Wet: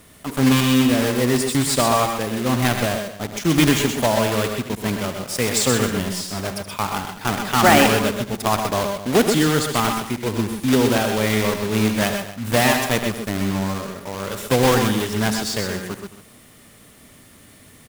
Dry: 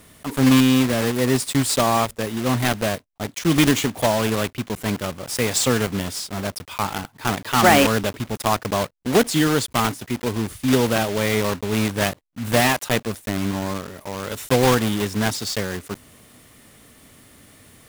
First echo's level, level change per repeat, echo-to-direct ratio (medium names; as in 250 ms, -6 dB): -12.5 dB, no regular repeats, -4.0 dB